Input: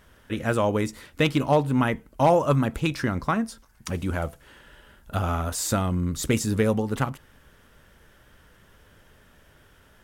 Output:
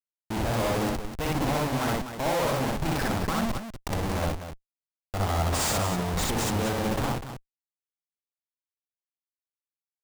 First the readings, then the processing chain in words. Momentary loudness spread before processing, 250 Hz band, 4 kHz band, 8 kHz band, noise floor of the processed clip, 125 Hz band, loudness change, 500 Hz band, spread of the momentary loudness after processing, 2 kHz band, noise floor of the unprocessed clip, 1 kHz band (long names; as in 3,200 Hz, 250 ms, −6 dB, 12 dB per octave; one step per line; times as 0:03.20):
12 LU, −4.0 dB, +2.0 dB, +0.5 dB, below −85 dBFS, −3.0 dB, −3.0 dB, −4.5 dB, 9 LU, −1.5 dB, −57 dBFS, −2.0 dB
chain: comparator with hysteresis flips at −31.5 dBFS
loudspeakers that aren't time-aligned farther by 21 metres 0 dB, 85 metres −8 dB
dynamic equaliser 790 Hz, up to +5 dB, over −43 dBFS, Q 2
level −3.5 dB